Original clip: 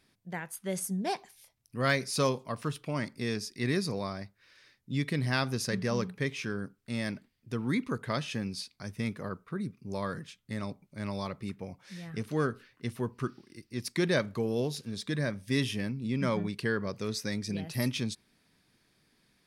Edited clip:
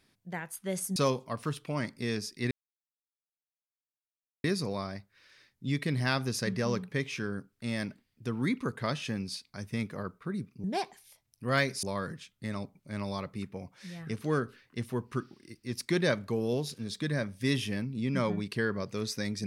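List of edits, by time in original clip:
0.96–2.15 move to 9.9
3.7 insert silence 1.93 s

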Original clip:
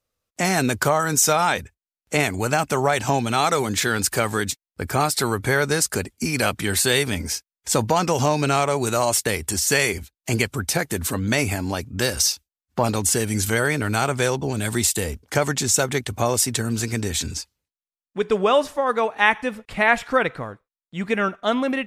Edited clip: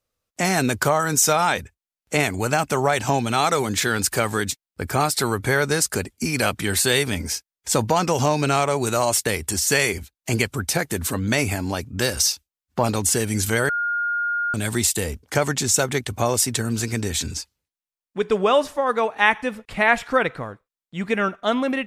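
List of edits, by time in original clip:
13.69–14.54 bleep 1420 Hz -20.5 dBFS

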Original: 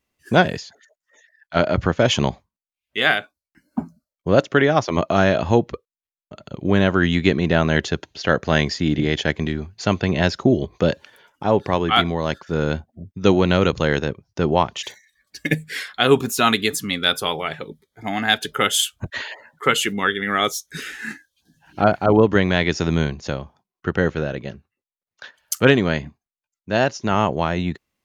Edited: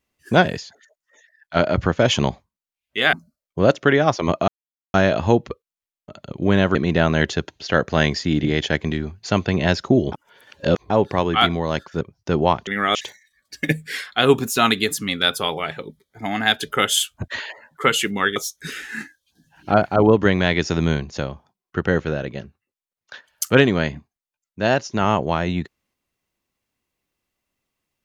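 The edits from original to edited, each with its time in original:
3.13–3.82 cut
5.17 insert silence 0.46 s
6.98–7.3 cut
10.67–11.45 reverse
12.56–14.11 cut
20.18–20.46 move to 14.77

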